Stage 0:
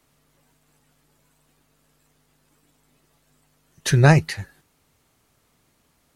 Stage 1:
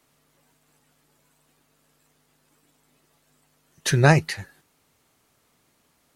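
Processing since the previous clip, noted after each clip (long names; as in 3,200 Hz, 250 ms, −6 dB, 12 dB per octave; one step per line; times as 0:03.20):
low-shelf EQ 110 Hz −9.5 dB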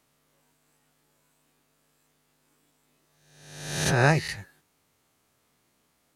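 peak hold with a rise ahead of every peak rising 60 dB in 0.95 s
level −6.5 dB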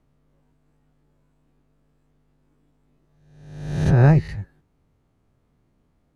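spectral tilt −4.5 dB per octave
level −2.5 dB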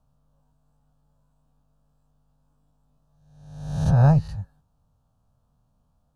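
phaser with its sweep stopped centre 860 Hz, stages 4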